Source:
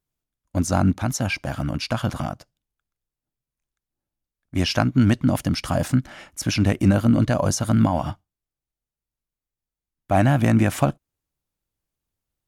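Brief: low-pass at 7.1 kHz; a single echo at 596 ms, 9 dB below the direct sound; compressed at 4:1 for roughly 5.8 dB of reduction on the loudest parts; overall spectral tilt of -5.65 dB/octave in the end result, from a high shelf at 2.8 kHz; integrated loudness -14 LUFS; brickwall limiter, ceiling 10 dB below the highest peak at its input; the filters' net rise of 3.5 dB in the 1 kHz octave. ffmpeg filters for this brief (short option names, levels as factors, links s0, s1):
-af "lowpass=7100,equalizer=f=1000:t=o:g=5.5,highshelf=f=2800:g=-3.5,acompressor=threshold=0.112:ratio=4,alimiter=limit=0.141:level=0:latency=1,aecho=1:1:596:0.355,volume=5.31"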